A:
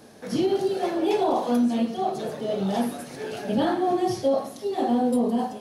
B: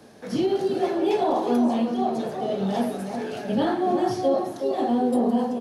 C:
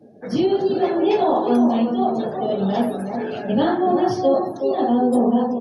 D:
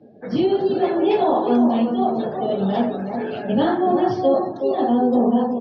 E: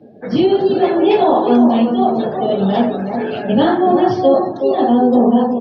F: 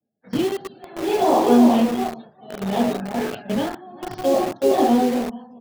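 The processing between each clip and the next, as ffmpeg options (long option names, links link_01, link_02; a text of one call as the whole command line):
ffmpeg -i in.wav -filter_complex "[0:a]highshelf=frequency=7300:gain=-6,acrossover=split=120|2100[link_01][link_02][link_03];[link_02]aecho=1:1:369|882:0.501|0.133[link_04];[link_03]volume=31dB,asoftclip=hard,volume=-31dB[link_05];[link_01][link_04][link_05]amix=inputs=3:normalize=0" out.wav
ffmpeg -i in.wav -af "afftdn=noise_reduction=26:noise_floor=-45,volume=4.5dB" out.wav
ffmpeg -i in.wav -af "lowpass=frequency=4400:width=0.5412,lowpass=frequency=4400:width=1.3066" out.wav
ffmpeg -i in.wav -af "equalizer=frequency=2900:width=1.5:gain=2,volume=5.5dB" out.wav
ffmpeg -i in.wav -filter_complex "[0:a]agate=range=-33dB:threshold=-16dB:ratio=3:detection=peak,tremolo=f=0.64:d=0.92,acrossover=split=300|590[link_01][link_02][link_03];[link_02]acrusher=bits=4:mix=0:aa=0.000001[link_04];[link_01][link_04][link_03]amix=inputs=3:normalize=0,volume=-2dB" out.wav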